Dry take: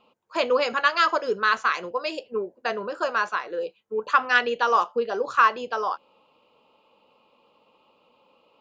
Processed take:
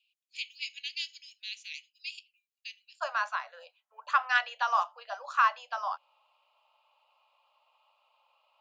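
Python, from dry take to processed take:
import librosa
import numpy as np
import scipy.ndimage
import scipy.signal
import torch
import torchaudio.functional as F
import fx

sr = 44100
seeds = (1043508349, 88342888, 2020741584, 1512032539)

y = fx.steep_highpass(x, sr, hz=fx.steps((0.0, 2300.0), (3.0, 610.0)), slope=72)
y = y * 10.0 ** (-6.0 / 20.0)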